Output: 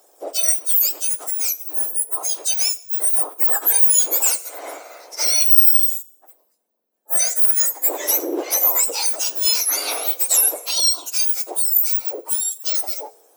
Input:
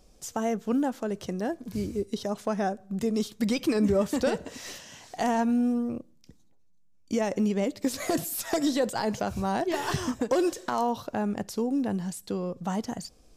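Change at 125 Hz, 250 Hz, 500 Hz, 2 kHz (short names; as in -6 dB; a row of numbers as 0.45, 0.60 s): under -40 dB, -13.0 dB, -4.0 dB, +4.0 dB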